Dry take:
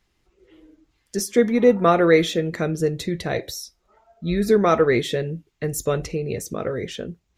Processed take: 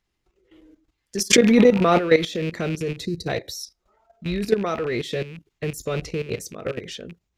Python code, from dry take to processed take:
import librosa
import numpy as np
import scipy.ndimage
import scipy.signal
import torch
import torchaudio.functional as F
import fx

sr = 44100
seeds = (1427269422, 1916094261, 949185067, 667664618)

y = fx.rattle_buzz(x, sr, strikes_db=-30.0, level_db=-25.0)
y = fx.spec_box(y, sr, start_s=3.06, length_s=0.22, low_hz=510.0, high_hz=3800.0, gain_db=-22)
y = fx.level_steps(y, sr, step_db=13)
y = fx.dynamic_eq(y, sr, hz=4600.0, q=1.7, threshold_db=-49.0, ratio=4.0, max_db=6)
y = fx.pre_swell(y, sr, db_per_s=22.0, at=(1.3, 1.97), fade=0.02)
y = y * 10.0 ** (1.5 / 20.0)